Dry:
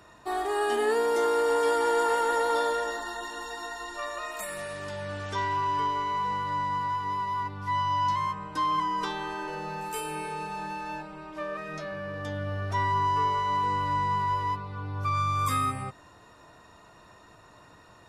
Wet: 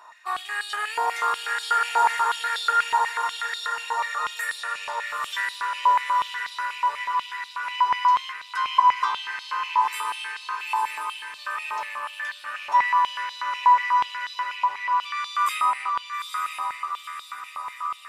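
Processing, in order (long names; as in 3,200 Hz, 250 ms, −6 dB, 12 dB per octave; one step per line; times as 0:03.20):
loose part that buzzes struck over −46 dBFS, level −37 dBFS
feedback delay with all-pass diffusion 904 ms, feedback 56%, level −4 dB
high-pass on a step sequencer 8.2 Hz 930–3,800 Hz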